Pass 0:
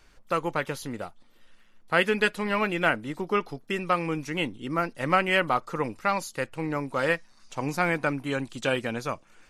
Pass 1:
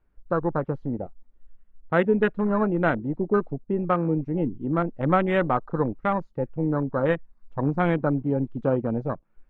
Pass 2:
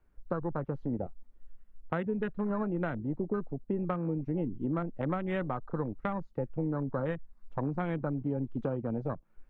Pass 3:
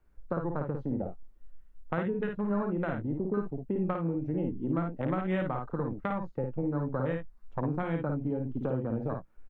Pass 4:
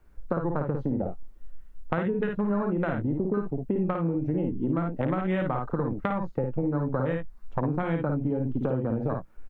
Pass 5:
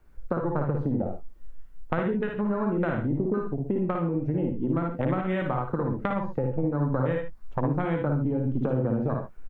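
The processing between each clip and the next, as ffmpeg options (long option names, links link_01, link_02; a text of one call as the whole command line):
ffmpeg -i in.wav -af "lowpass=1500,afwtdn=0.0282,lowshelf=frequency=430:gain=9" out.wav
ffmpeg -i in.wav -filter_complex "[0:a]acrossover=split=180[link_01][link_02];[link_01]alimiter=level_in=10dB:limit=-24dB:level=0:latency=1,volume=-10dB[link_03];[link_02]acompressor=threshold=-31dB:ratio=10[link_04];[link_03][link_04]amix=inputs=2:normalize=0" out.wav
ffmpeg -i in.wav -af "aecho=1:1:54|70:0.596|0.2" out.wav
ffmpeg -i in.wav -af "acompressor=threshold=-33dB:ratio=3,volume=8.5dB" out.wav
ffmpeg -i in.wav -af "aecho=1:1:62|76:0.335|0.316" out.wav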